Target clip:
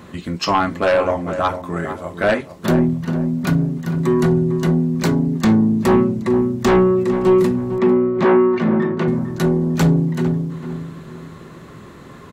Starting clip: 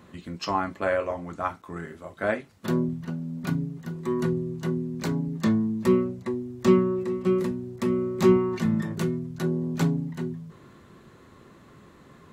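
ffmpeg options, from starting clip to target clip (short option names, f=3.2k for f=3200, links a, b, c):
-filter_complex "[0:a]asplit=2[a][b];[b]aeval=exprs='0.447*sin(PI/2*3.98*val(0)/0.447)':c=same,volume=-7dB[c];[a][c]amix=inputs=2:normalize=0,asettb=1/sr,asplit=3[d][e][f];[d]atrim=end=7.784[g];[e]atrim=start=7.78:end=9.08,asetpts=PTS-STARTPTS,afade=t=in:d=0.004:c=qsin,afade=t=out:st=1.296:d=0.004:c=qsin,highpass=200,lowpass=2.4k[h];[f]atrim=start=9.076[i];[g][h]acrossfade=d=0.004:c1=hsin:c2=qsin[j];[j][i]acrossfade=d=0.004:c1=qsin:c2=hsin,asplit=2[k][l];[l]adelay=451,lowpass=f=1.3k:p=1,volume=-9dB,asplit=2[m][n];[n]adelay=451,lowpass=f=1.3k:p=1,volume=0.38,asplit=2[o][p];[p]adelay=451,lowpass=f=1.3k:p=1,volume=0.38,asplit=2[q][r];[r]adelay=451,lowpass=f=1.3k:p=1,volume=0.38[s];[k][m][o][q][s]amix=inputs=5:normalize=0"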